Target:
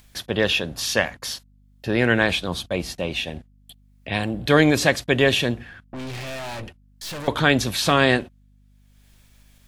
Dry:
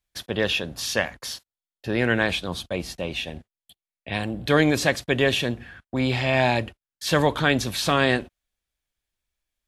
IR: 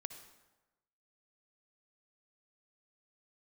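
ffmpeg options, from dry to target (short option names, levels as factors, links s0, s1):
-filter_complex "[0:a]asettb=1/sr,asplit=3[s0][s1][s2];[s0]atrim=end=5.624[s3];[s1]atrim=start=5.62:end=7.28,asetpts=PTS-STARTPTS,afade=t=in:d=0.004:c=qsin,afade=t=out:st=1.656:d=0.004:c=qsin,aeval=exprs='(tanh(50.1*val(0)+0.4)-tanh(0.4))/50.1':c=same[s4];[s2]atrim=start=7.276[s5];[s3][s4]acrossfade=d=0.004:c1=hsin:c2=qsin[s6];[s6][s5]acrossfade=d=0.004:c1=qsin:c2=hsin,acompressor=mode=upward:threshold=0.00891:ratio=2.5,aeval=exprs='val(0)+0.00141*(sin(2*PI*50*n/s)+sin(2*PI*2*50*n/s)/2+sin(2*PI*3*50*n/s)/3+sin(2*PI*4*50*n/s)/4+sin(2*PI*5*50*n/s)/5)':c=same,volume=1.41"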